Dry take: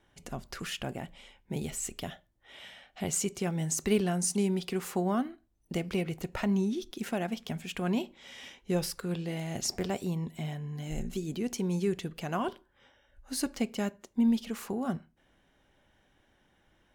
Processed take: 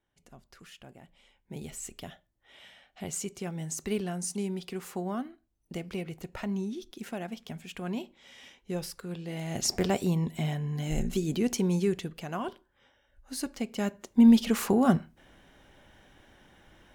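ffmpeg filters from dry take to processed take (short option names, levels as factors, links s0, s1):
-af "volume=7.94,afade=t=in:st=0.99:d=0.75:silence=0.334965,afade=t=in:st=9.21:d=0.64:silence=0.316228,afade=t=out:st=11.47:d=0.79:silence=0.398107,afade=t=in:st=13.67:d=0.84:silence=0.237137"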